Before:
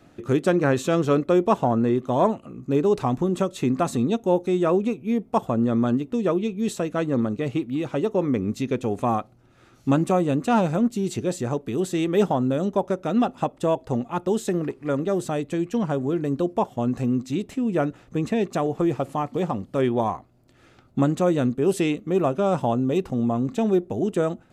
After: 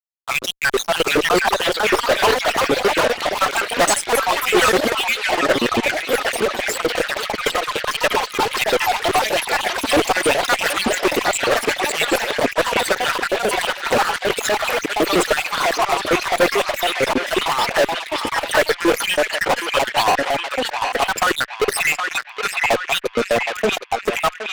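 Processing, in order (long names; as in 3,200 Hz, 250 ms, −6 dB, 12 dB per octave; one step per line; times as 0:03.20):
time-frequency cells dropped at random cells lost 71%
sample-and-hold tremolo
auto-filter high-pass square 6.5 Hz 500–1,800 Hz
harmonic and percussive parts rebalanced harmonic −3 dB
fuzz pedal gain 39 dB, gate −46 dBFS
feedback echo with a band-pass in the loop 768 ms, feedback 61%, band-pass 2,200 Hz, level −3 dB
delay with pitch and tempo change per echo 703 ms, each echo +3 semitones, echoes 3
0:22.40–0:23.65: multiband upward and downward compressor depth 40%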